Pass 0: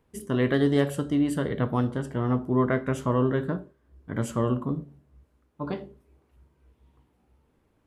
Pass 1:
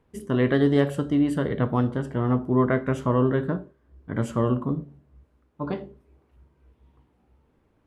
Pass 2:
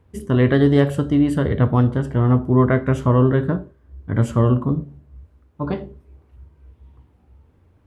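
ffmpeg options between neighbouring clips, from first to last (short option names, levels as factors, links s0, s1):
-af "aemphasis=mode=reproduction:type=cd,volume=1.26"
-af "equalizer=f=84:w=1.7:g=14.5,volume=1.58"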